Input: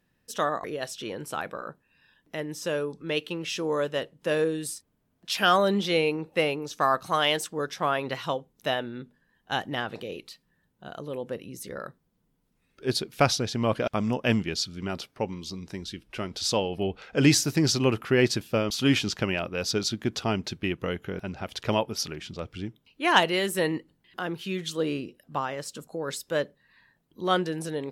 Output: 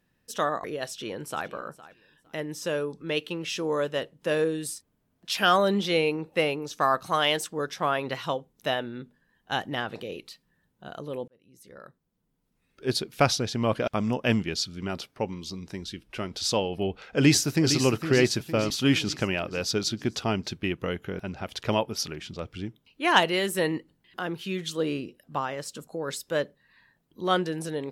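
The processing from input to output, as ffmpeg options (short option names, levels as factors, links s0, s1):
-filter_complex "[0:a]asplit=2[s0][s1];[s1]afade=t=in:st=0.9:d=0.01,afade=t=out:st=1.48:d=0.01,aecho=0:1:460|920:0.133352|0.0266704[s2];[s0][s2]amix=inputs=2:normalize=0,asplit=2[s3][s4];[s4]afade=t=in:st=16.88:d=0.01,afade=t=out:st=17.8:d=0.01,aecho=0:1:460|920|1380|1840|2300|2760:0.334965|0.184231|0.101327|0.0557299|0.0306514|0.0168583[s5];[s3][s5]amix=inputs=2:normalize=0,asplit=2[s6][s7];[s6]atrim=end=11.28,asetpts=PTS-STARTPTS,afade=t=out:st=11.276:d=0.004:c=hsin[s8];[s7]atrim=start=11.28,asetpts=PTS-STARTPTS,afade=t=in:d=1.6[s9];[s8][s9]concat=n=2:v=0:a=1"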